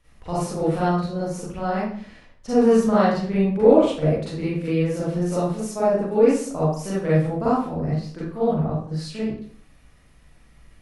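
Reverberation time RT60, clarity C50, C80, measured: 0.55 s, −2.0 dB, 4.0 dB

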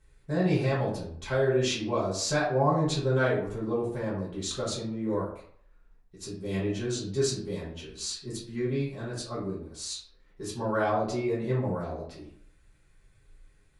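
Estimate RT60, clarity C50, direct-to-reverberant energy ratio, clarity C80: 0.60 s, 4.5 dB, −9.0 dB, 8.5 dB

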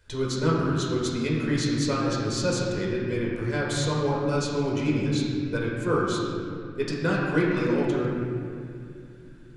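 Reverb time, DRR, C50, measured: 2.5 s, −5.0 dB, −1.0 dB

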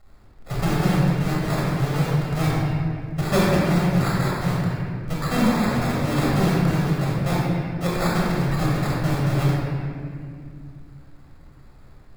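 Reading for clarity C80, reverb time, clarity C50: −0.5 dB, 2.2 s, −3.0 dB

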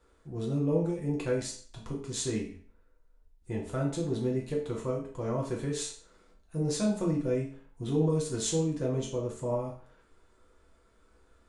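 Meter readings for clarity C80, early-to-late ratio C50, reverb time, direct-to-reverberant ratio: 10.5 dB, 6.0 dB, 0.50 s, −3.5 dB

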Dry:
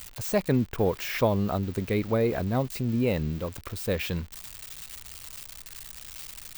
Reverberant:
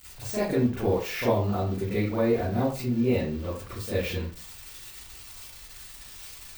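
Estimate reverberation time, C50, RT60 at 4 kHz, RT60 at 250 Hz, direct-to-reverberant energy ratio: 0.40 s, 1.0 dB, 0.25 s, 0.35 s, −11.5 dB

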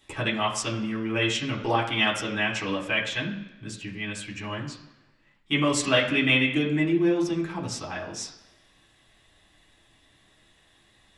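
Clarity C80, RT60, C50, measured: 11.0 dB, 1.1 s, 8.5 dB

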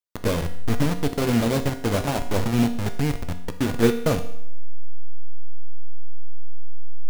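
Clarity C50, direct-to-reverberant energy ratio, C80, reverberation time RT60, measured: 11.0 dB, 7.5 dB, 14.0 dB, 0.70 s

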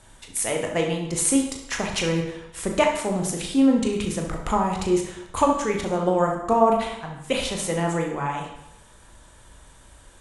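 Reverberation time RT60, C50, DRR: 0.85 s, 5.0 dB, 1.5 dB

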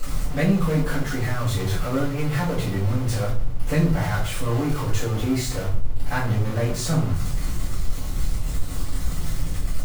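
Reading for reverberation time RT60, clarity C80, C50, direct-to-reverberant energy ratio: 0.45 s, 11.0 dB, 6.5 dB, −10.0 dB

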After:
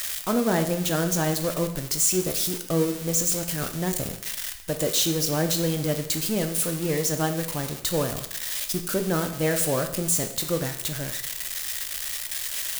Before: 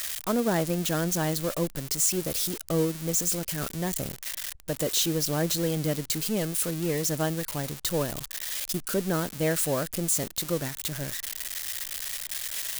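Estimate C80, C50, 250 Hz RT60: 12.5 dB, 10.0 dB, 0.80 s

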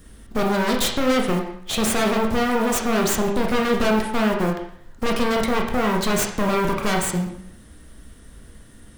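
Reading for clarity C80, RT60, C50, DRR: 9.0 dB, 0.70 s, 5.5 dB, 0.5 dB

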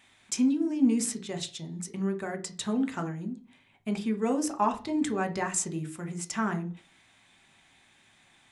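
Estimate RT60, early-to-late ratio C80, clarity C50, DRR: 0.40 s, 21.0 dB, 15.5 dB, 5.5 dB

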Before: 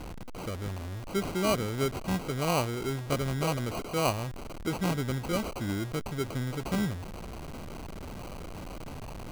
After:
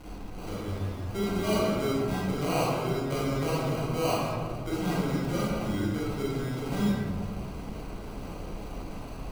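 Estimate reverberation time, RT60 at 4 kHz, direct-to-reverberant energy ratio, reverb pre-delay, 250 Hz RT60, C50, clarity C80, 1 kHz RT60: 1.7 s, 0.90 s, −7.5 dB, 28 ms, 2.1 s, −2.5 dB, 0.0 dB, 1.5 s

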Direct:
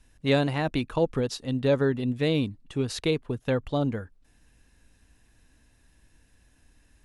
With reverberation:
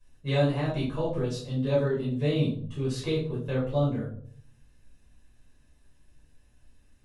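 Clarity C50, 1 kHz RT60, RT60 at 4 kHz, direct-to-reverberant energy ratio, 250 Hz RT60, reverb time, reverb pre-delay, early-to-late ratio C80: 4.5 dB, 0.50 s, 0.35 s, −8.0 dB, 0.75 s, 0.60 s, 6 ms, 10.0 dB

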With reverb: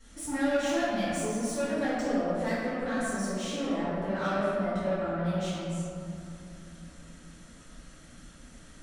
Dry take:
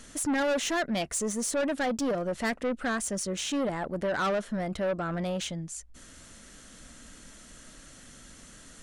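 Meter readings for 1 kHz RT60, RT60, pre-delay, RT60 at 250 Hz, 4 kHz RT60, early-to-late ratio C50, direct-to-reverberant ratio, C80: 2.9 s, 2.8 s, 3 ms, 3.5 s, 1.3 s, −4.0 dB, −17.5 dB, −2.0 dB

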